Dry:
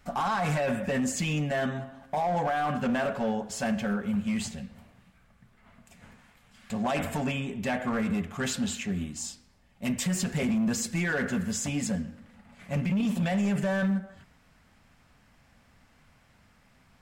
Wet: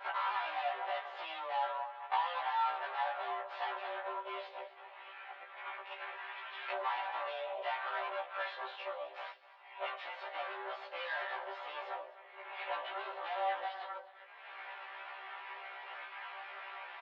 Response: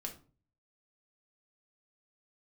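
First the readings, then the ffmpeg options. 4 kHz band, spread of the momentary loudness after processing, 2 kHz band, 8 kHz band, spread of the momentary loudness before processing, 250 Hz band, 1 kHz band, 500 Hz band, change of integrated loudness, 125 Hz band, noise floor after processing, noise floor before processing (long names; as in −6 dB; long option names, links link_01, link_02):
−6.5 dB, 13 LU, −5.5 dB, below −40 dB, 7 LU, below −35 dB, −2.0 dB, −9.5 dB, −10.5 dB, below −40 dB, −55 dBFS, −62 dBFS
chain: -af "aeval=exprs='0.0841*(cos(1*acos(clip(val(0)/0.0841,-1,1)))-cos(1*PI/2))+0.0299*(cos(6*acos(clip(val(0)/0.0841,-1,1)))-cos(6*PI/2))+0.00299*(cos(7*acos(clip(val(0)/0.0841,-1,1)))-cos(7*PI/2))':channel_layout=same,flanger=delay=7.6:depth=9.6:regen=-47:speed=0.15:shape=triangular,acompressor=mode=upward:threshold=-40dB:ratio=2.5,adynamicequalizer=threshold=0.00316:dfrequency=2200:dqfactor=1.6:tfrequency=2200:tqfactor=1.6:attack=5:release=100:ratio=0.375:range=2.5:mode=cutabove:tftype=bell,acompressor=threshold=-42dB:ratio=8,aemphasis=mode=reproduction:type=75kf,aecho=1:1:5:0.91,highpass=frequency=440:width_type=q:width=0.5412,highpass=frequency=440:width_type=q:width=1.307,lowpass=frequency=3500:width_type=q:width=0.5176,lowpass=frequency=3500:width_type=q:width=0.7071,lowpass=frequency=3500:width_type=q:width=1.932,afreqshift=170,aecho=1:1:253:0.133,afftfilt=real='re*1.73*eq(mod(b,3),0)':imag='im*1.73*eq(mod(b,3),0)':win_size=2048:overlap=0.75,volume=13dB"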